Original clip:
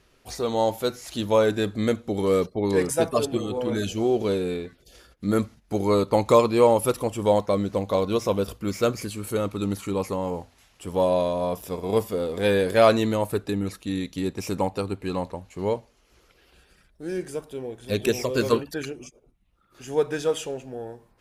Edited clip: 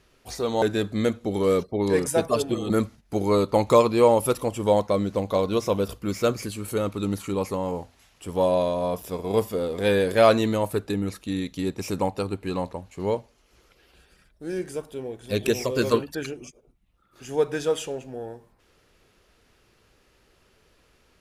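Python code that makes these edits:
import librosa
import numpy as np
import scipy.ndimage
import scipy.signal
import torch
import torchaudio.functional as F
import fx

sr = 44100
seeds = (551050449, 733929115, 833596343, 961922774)

y = fx.edit(x, sr, fx.cut(start_s=0.62, length_s=0.83),
    fx.cut(start_s=3.53, length_s=1.76), tone=tone)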